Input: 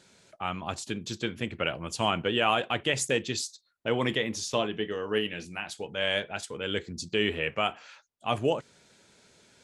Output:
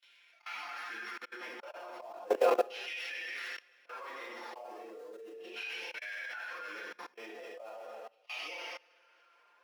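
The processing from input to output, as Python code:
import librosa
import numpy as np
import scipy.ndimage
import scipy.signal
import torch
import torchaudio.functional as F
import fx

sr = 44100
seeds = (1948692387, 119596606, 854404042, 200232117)

p1 = np.r_[np.sort(x[:len(x) // 8 * 8].reshape(-1, 8), axis=1).ravel(), x[len(x) // 8 * 8:]]
p2 = p1 + fx.echo_feedback(p1, sr, ms=158, feedback_pct=41, wet_db=-17.0, dry=0)
p3 = fx.filter_lfo_bandpass(p2, sr, shape='saw_down', hz=0.37, low_hz=400.0, high_hz=3000.0, q=3.0)
p4 = fx.quant_float(p3, sr, bits=2)
p5 = p3 + F.gain(torch.from_numpy(p4), -4.5).numpy()
p6 = fx.rev_double_slope(p5, sr, seeds[0], early_s=0.7, late_s=2.3, knee_db=-18, drr_db=-7.5)
p7 = fx.auto_swell(p6, sr, attack_ms=171.0)
p8 = fx.pitch_keep_formants(p7, sr, semitones=1.0)
p9 = fx.high_shelf(p8, sr, hz=3200.0, db=-9.5)
p10 = p9 + 0.4 * np.pad(p9, (int(5.7 * sr / 1000.0), 0))[:len(p9)]
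p11 = fx.level_steps(p10, sr, step_db=23)
p12 = scipy.signal.sosfilt(scipy.signal.butter(4, 270.0, 'highpass', fs=sr, output='sos'), p11)
p13 = fx.tilt_shelf(p12, sr, db=-5.5, hz=1200.0)
y = F.gain(torch.from_numpy(p13), 2.5).numpy()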